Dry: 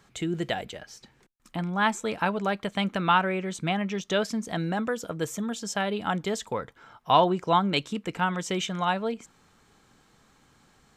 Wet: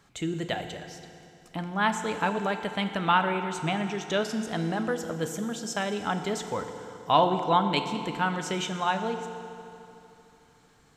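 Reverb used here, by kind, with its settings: FDN reverb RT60 2.9 s, high-frequency decay 0.85×, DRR 6.5 dB; trim -1.5 dB

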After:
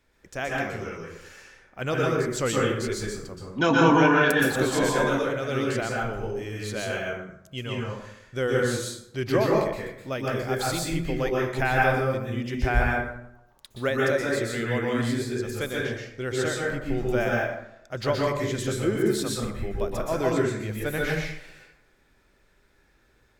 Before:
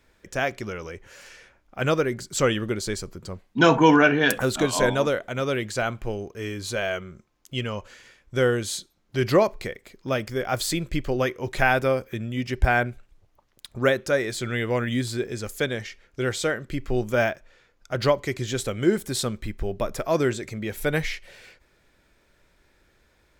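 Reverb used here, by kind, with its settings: plate-style reverb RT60 0.78 s, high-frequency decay 0.55×, pre-delay 110 ms, DRR -3.5 dB; trim -6 dB

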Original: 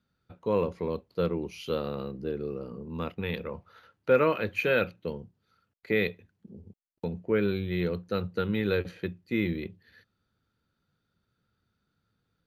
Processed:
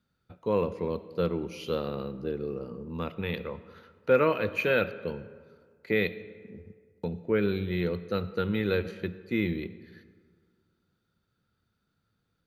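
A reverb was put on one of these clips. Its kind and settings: algorithmic reverb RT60 1.9 s, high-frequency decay 0.5×, pre-delay 30 ms, DRR 15 dB

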